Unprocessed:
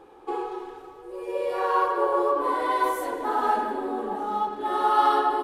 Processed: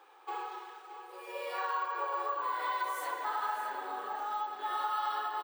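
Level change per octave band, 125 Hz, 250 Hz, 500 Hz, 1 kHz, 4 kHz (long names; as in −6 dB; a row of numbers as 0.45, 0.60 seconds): can't be measured, −23.0 dB, −17.0 dB, −10.0 dB, −5.5 dB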